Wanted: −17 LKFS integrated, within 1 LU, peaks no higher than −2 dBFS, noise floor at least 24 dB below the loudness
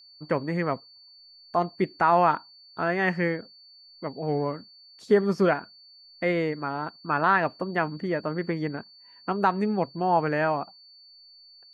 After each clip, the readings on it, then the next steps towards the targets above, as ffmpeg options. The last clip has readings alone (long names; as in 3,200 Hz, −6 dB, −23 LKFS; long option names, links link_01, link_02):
interfering tone 4,500 Hz; level of the tone −50 dBFS; integrated loudness −26.5 LKFS; sample peak −9.0 dBFS; target loudness −17.0 LKFS
→ -af "bandreject=frequency=4500:width=30"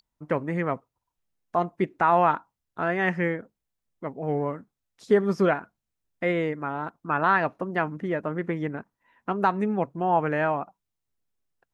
interfering tone none found; integrated loudness −26.5 LKFS; sample peak −8.5 dBFS; target loudness −17.0 LKFS
→ -af "volume=9.5dB,alimiter=limit=-2dB:level=0:latency=1"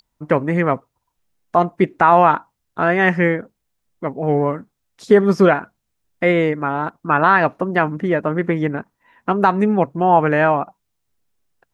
integrated loudness −17.5 LKFS; sample peak −2.0 dBFS; background noise floor −75 dBFS